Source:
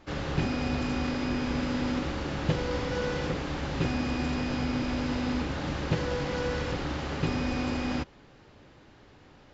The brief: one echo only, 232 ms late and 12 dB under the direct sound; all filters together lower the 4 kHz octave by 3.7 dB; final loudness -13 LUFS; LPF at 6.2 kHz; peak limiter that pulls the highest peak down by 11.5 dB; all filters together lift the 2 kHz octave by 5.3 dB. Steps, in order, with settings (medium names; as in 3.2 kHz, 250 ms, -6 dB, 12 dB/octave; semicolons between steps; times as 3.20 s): low-pass 6.2 kHz; peaking EQ 2 kHz +9 dB; peaking EQ 4 kHz -8.5 dB; peak limiter -25.5 dBFS; delay 232 ms -12 dB; trim +21.5 dB